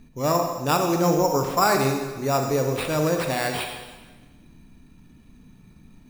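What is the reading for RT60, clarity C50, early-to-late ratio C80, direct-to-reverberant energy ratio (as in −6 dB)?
1.3 s, 4.5 dB, 6.5 dB, 3.5 dB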